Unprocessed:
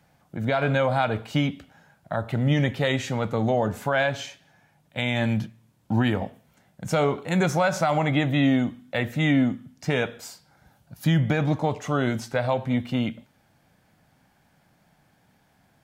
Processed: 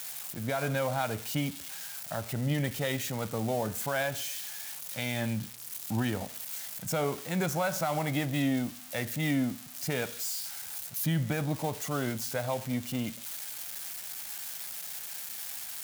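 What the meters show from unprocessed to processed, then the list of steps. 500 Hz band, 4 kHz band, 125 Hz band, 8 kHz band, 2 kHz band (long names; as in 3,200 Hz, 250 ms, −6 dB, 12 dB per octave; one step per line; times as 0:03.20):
−8.0 dB, −4.5 dB, −8.0 dB, +6.5 dB, −7.5 dB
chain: spike at every zero crossing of −21 dBFS
level −8 dB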